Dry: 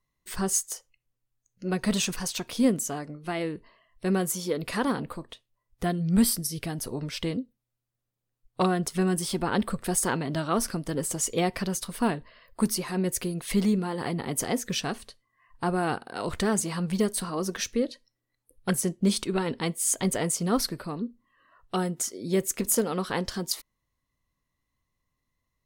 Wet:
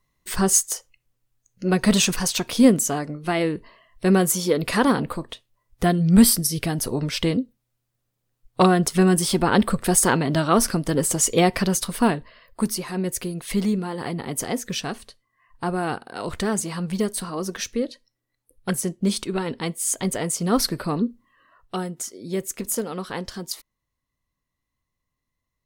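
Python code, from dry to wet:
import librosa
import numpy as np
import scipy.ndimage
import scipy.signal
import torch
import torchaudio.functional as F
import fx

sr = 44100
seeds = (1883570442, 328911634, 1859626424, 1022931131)

y = fx.gain(x, sr, db=fx.line((11.85, 8.0), (12.66, 1.5), (20.27, 1.5), (20.97, 10.0), (21.88, -1.5)))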